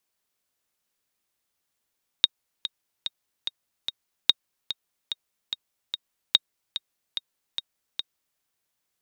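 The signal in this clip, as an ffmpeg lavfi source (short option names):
-f lavfi -i "aevalsrc='pow(10,(-2.5-12.5*gte(mod(t,5*60/146),60/146))/20)*sin(2*PI*3740*mod(t,60/146))*exp(-6.91*mod(t,60/146)/0.03)':d=6.16:s=44100"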